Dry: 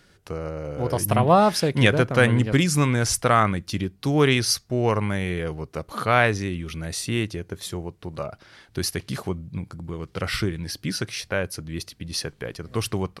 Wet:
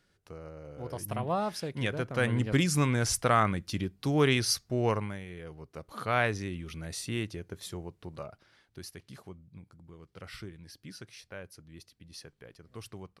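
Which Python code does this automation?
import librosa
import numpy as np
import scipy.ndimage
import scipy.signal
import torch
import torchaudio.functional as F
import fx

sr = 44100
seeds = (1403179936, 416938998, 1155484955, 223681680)

y = fx.gain(x, sr, db=fx.line((1.92, -14.0), (2.58, -6.0), (4.91, -6.0), (5.26, -17.5), (6.2, -8.5), (8.07, -8.5), (8.85, -18.5)))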